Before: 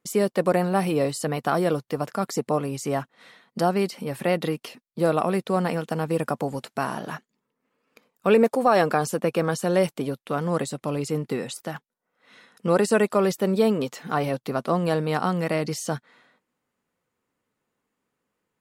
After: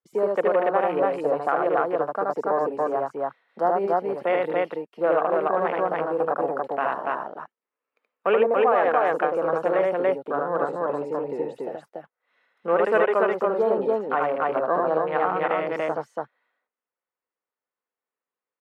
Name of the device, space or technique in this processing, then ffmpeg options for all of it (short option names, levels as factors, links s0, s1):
DJ mixer with the lows and highs turned down: -filter_complex "[0:a]asettb=1/sr,asplit=3[s0][s1][s2];[s0]atrim=end=14.604[s3];[s1]atrim=start=14.6:end=15.48,asetpts=PTS-STARTPTS,afade=t=in:d=0.004:c=qsin,afade=t=out:st=0.876:d=0.004:c=qsin,lowpass=8200[s4];[s2]atrim=start=15.476[s5];[s3][s4]acrossfade=d=0.004:c1=hsin:c2=qsin[s6];[s6][s5]acrossfade=d=0.004:c1=qsin:c2=hsin,afwtdn=0.0282,acrossover=split=380 3000:gain=0.0708 1 0.158[s7][s8][s9];[s7][s8][s9]amix=inputs=3:normalize=0,aecho=1:1:75.8|285.7:0.794|0.891,alimiter=limit=0.251:level=0:latency=1:release=206,volume=1.26"